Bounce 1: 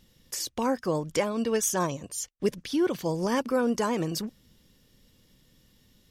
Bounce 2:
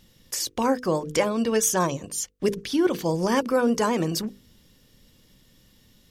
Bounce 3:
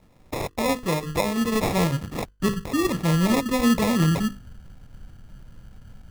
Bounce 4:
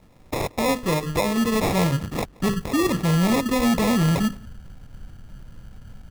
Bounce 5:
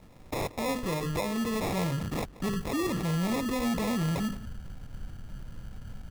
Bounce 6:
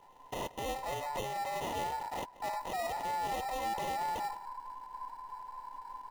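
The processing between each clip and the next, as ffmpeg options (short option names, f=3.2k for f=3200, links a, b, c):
-af "bandreject=f=50:t=h:w=6,bandreject=f=100:t=h:w=6,bandreject=f=150:t=h:w=6,bandreject=f=200:t=h:w=6,bandreject=f=250:t=h:w=6,bandreject=f=300:t=h:w=6,bandreject=f=350:t=h:w=6,bandreject=f=400:t=h:w=6,bandreject=f=450:t=h:w=6,bandreject=f=500:t=h:w=6,volume=4.5dB"
-af "asubboost=boost=9:cutoff=150,acrusher=samples=29:mix=1:aa=0.000001"
-filter_complex "[0:a]volume=19.5dB,asoftclip=hard,volume=-19.5dB,asplit=2[a][b];[b]adelay=174.9,volume=-25dB,highshelf=f=4k:g=-3.94[c];[a][c]amix=inputs=2:normalize=0,volume=3dB"
-af "alimiter=level_in=1.5dB:limit=-24dB:level=0:latency=1:release=20,volume=-1.5dB"
-af "afftfilt=real='real(if(between(b,1,1008),(2*floor((b-1)/48)+1)*48-b,b),0)':imag='imag(if(between(b,1,1008),(2*floor((b-1)/48)+1)*48-b,b),0)*if(between(b,1,1008),-1,1)':win_size=2048:overlap=0.75,volume=-6.5dB"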